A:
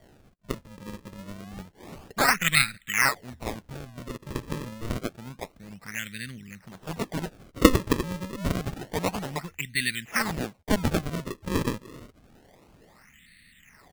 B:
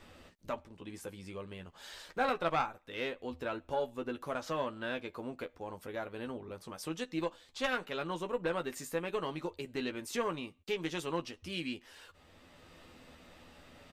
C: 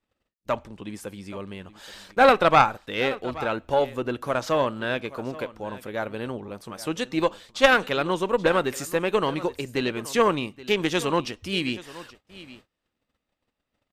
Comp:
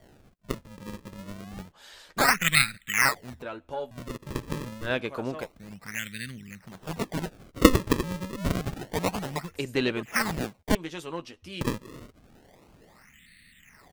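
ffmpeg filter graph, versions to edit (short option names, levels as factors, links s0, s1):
-filter_complex "[1:a]asplit=3[s0][s1][s2];[2:a]asplit=2[s3][s4];[0:a]asplit=6[s5][s6][s7][s8][s9][s10];[s5]atrim=end=1.722[s11];[s0]atrim=start=1.718:end=2.172[s12];[s6]atrim=start=2.168:end=3.422[s13];[s1]atrim=start=3.418:end=3.912[s14];[s7]atrim=start=3.908:end=4.92[s15];[s3]atrim=start=4.82:end=5.48[s16];[s8]atrim=start=5.38:end=9.552[s17];[s4]atrim=start=9.548:end=10.032[s18];[s9]atrim=start=10.028:end=10.752[s19];[s2]atrim=start=10.748:end=11.612[s20];[s10]atrim=start=11.608[s21];[s11][s12]acrossfade=d=0.004:c1=hsin:c2=hsin[s22];[s22][s13]acrossfade=d=0.004:c1=hsin:c2=hsin[s23];[s23][s14]acrossfade=d=0.004:c1=hsin:c2=hsin[s24];[s24][s15]acrossfade=d=0.004:c1=hsin:c2=hsin[s25];[s25][s16]acrossfade=d=0.1:c1=tri:c2=tri[s26];[s26][s17]acrossfade=d=0.1:c1=tri:c2=tri[s27];[s27][s18]acrossfade=d=0.004:c1=hsin:c2=hsin[s28];[s28][s19]acrossfade=d=0.004:c1=hsin:c2=hsin[s29];[s29][s20]acrossfade=d=0.004:c1=hsin:c2=hsin[s30];[s30][s21]acrossfade=d=0.004:c1=hsin:c2=hsin"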